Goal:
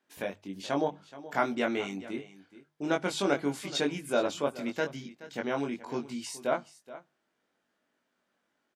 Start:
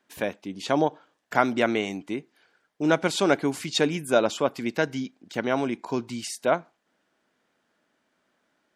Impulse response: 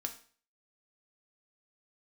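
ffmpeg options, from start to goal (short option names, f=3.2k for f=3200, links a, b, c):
-filter_complex "[0:a]bandreject=f=50:t=h:w=6,bandreject=f=100:t=h:w=6,bandreject=f=150:t=h:w=6,asplit=2[a][b];[b]adelay=21,volume=-3dB[c];[a][c]amix=inputs=2:normalize=0,aecho=1:1:425:0.15,volume=-8dB"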